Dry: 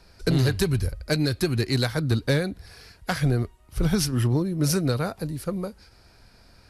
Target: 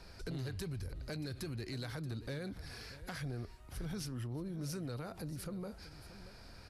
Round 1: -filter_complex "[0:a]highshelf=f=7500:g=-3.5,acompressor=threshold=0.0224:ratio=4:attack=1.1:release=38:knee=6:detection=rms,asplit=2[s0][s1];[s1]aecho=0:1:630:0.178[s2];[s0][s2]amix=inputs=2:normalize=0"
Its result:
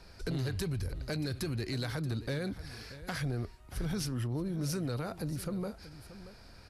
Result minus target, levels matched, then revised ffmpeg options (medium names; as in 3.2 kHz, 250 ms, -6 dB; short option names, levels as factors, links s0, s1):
compression: peak gain reduction -7 dB
-filter_complex "[0:a]highshelf=f=7500:g=-3.5,acompressor=threshold=0.00794:ratio=4:attack=1.1:release=38:knee=6:detection=rms,asplit=2[s0][s1];[s1]aecho=0:1:630:0.178[s2];[s0][s2]amix=inputs=2:normalize=0"